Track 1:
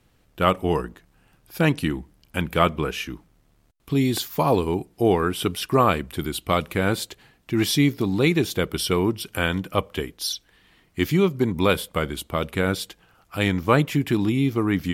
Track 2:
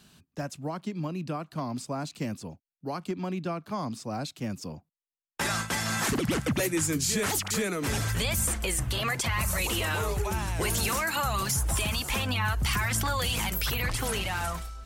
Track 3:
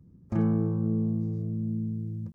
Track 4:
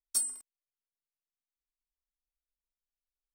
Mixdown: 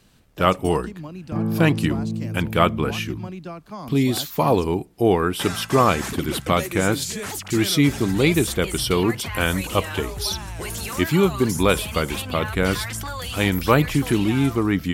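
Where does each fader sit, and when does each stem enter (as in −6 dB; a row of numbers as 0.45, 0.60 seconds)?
+1.5, −2.5, +1.5, −12.0 decibels; 0.00, 0.00, 1.00, 0.50 seconds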